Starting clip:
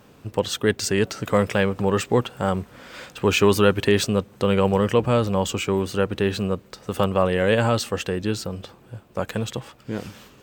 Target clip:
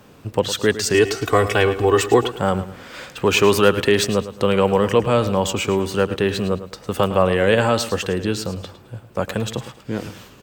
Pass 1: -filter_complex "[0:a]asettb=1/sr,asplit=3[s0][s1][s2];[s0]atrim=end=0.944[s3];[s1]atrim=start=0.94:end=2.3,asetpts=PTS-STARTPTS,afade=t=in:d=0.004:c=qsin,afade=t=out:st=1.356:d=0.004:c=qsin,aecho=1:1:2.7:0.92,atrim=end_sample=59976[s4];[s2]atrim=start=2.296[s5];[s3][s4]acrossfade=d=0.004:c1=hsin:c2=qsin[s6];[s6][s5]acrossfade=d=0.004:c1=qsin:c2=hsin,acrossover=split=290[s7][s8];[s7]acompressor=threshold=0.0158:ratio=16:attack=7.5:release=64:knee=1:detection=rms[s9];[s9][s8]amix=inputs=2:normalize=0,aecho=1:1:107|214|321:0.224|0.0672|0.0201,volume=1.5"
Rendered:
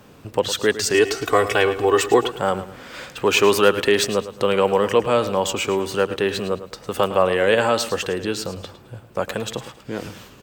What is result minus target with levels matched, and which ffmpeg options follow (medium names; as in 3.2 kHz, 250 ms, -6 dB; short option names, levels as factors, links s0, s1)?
compression: peak gain reduction +10.5 dB
-filter_complex "[0:a]asettb=1/sr,asplit=3[s0][s1][s2];[s0]atrim=end=0.944[s3];[s1]atrim=start=0.94:end=2.3,asetpts=PTS-STARTPTS,afade=t=in:d=0.004:c=qsin,afade=t=out:st=1.356:d=0.004:c=qsin,aecho=1:1:2.7:0.92,atrim=end_sample=59976[s4];[s2]atrim=start=2.296[s5];[s3][s4]acrossfade=d=0.004:c1=hsin:c2=qsin[s6];[s6][s5]acrossfade=d=0.004:c1=qsin:c2=hsin,acrossover=split=290[s7][s8];[s7]acompressor=threshold=0.0562:ratio=16:attack=7.5:release=64:knee=1:detection=rms[s9];[s9][s8]amix=inputs=2:normalize=0,aecho=1:1:107|214|321:0.224|0.0672|0.0201,volume=1.5"